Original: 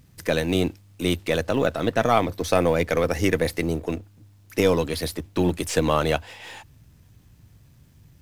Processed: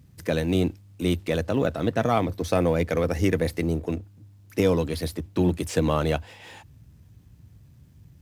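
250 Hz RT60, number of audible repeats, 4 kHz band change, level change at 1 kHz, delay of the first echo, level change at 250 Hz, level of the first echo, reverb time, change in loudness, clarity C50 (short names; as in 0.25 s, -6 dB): none, none, -5.5 dB, -4.0 dB, none, 0.0 dB, none, none, -1.5 dB, none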